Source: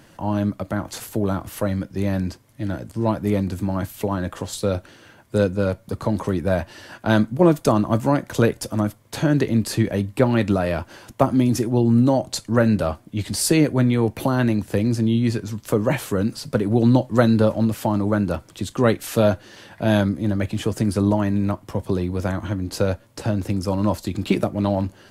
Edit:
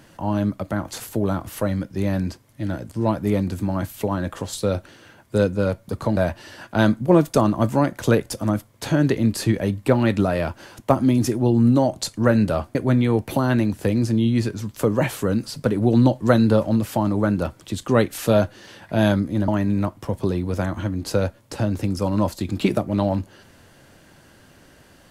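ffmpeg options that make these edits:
ffmpeg -i in.wav -filter_complex "[0:a]asplit=4[link_01][link_02][link_03][link_04];[link_01]atrim=end=6.172[link_05];[link_02]atrim=start=6.478:end=13.062[link_06];[link_03]atrim=start=13.638:end=20.372[link_07];[link_04]atrim=start=21.138[link_08];[link_05][link_06]acrossfade=duration=0.004:curve1=hsin:curve2=hsin[link_09];[link_09][link_07]acrossfade=duration=0.004:curve1=hsin:curve2=hsin[link_10];[link_10][link_08]acrossfade=duration=0.004:curve1=hsin:curve2=hsin" out.wav

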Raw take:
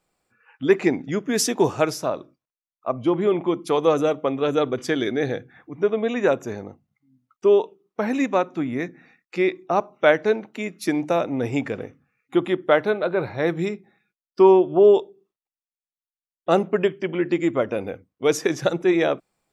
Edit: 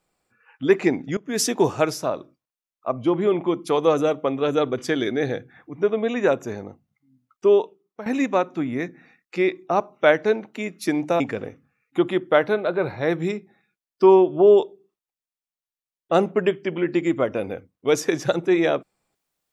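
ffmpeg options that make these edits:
ffmpeg -i in.wav -filter_complex "[0:a]asplit=4[link_01][link_02][link_03][link_04];[link_01]atrim=end=1.17,asetpts=PTS-STARTPTS,afade=type=out:start_time=1.166:duration=0.004:curve=hsin:silence=0.0944061[link_05];[link_02]atrim=start=1.17:end=8.06,asetpts=PTS-STARTPTS,afade=type=in:duration=0.26:silence=0.0944061,afade=type=out:start_time=6.4:duration=0.49:silence=0.199526[link_06];[link_03]atrim=start=8.06:end=11.202,asetpts=PTS-STARTPTS,afade=type=in:duration=0.004:curve=hsin:silence=0.199526[link_07];[link_04]atrim=start=11.568[link_08];[link_05][link_06][link_07]concat=n=3:v=0:a=1[link_09];[link_09][link_08]acrossfade=duration=0.004:curve1=hsin:curve2=hsin" out.wav

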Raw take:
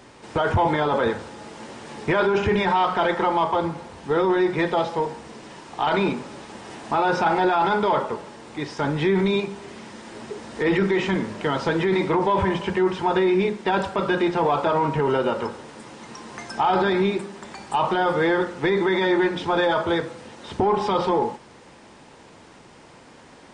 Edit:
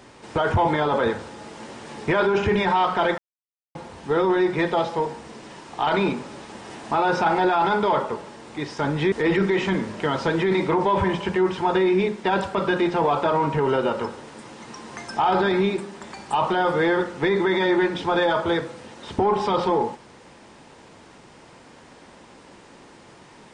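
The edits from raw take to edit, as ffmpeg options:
ffmpeg -i in.wav -filter_complex "[0:a]asplit=4[link_01][link_02][link_03][link_04];[link_01]atrim=end=3.18,asetpts=PTS-STARTPTS,afade=type=out:start_time=3.176:duration=0.004:curve=hsin[link_05];[link_02]atrim=start=3.18:end=3.75,asetpts=PTS-STARTPTS,volume=0[link_06];[link_03]atrim=start=3.75:end=9.122,asetpts=PTS-STARTPTS,afade=type=in:duration=0.004:curve=hsin[link_07];[link_04]atrim=start=10.528[link_08];[link_05][link_06][link_07]concat=n=3:v=0:a=1[link_09];[link_09][link_08]acrossfade=duration=0.004:curve1=hsin:curve2=hsin" out.wav

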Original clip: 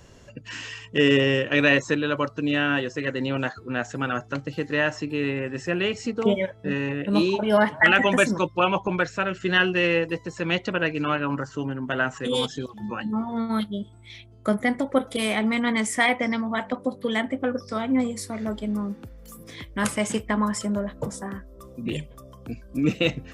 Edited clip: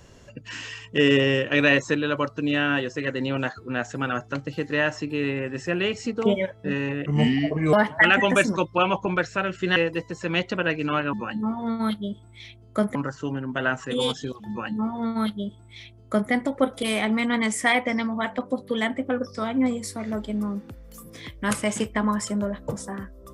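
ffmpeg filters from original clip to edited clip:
ffmpeg -i in.wav -filter_complex "[0:a]asplit=6[link_01][link_02][link_03][link_04][link_05][link_06];[link_01]atrim=end=7.064[link_07];[link_02]atrim=start=7.06:end=7.55,asetpts=PTS-STARTPTS,asetrate=32193,aresample=44100,atrim=end_sample=29601,asetpts=PTS-STARTPTS[link_08];[link_03]atrim=start=7.546:end=9.582[link_09];[link_04]atrim=start=9.918:end=11.292[link_10];[link_05]atrim=start=12.828:end=14.652[link_11];[link_06]atrim=start=11.288[link_12];[link_07][link_08]acrossfade=duration=0.004:curve1=hsin:curve2=hsin[link_13];[link_13][link_09]acrossfade=duration=0.004:curve1=hsin:curve2=hsin[link_14];[link_14][link_10]acrossfade=duration=0.004:curve1=hsin:curve2=hsin[link_15];[link_15][link_11]acrossfade=duration=0.004:curve1=hsin:curve2=hsin[link_16];[link_16][link_12]acrossfade=duration=0.004:curve1=hsin:curve2=hsin" out.wav

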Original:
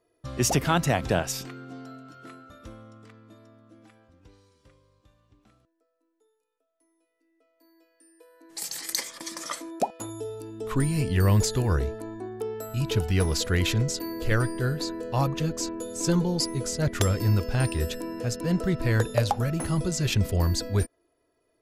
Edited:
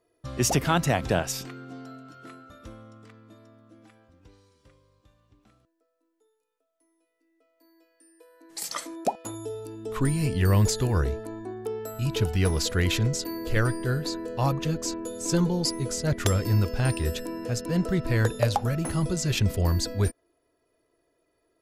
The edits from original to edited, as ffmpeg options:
ffmpeg -i in.wav -filter_complex "[0:a]asplit=2[link_01][link_02];[link_01]atrim=end=8.722[link_03];[link_02]atrim=start=9.468[link_04];[link_03][link_04]acrossfade=duration=0.004:curve1=hsin:curve2=hsin" out.wav

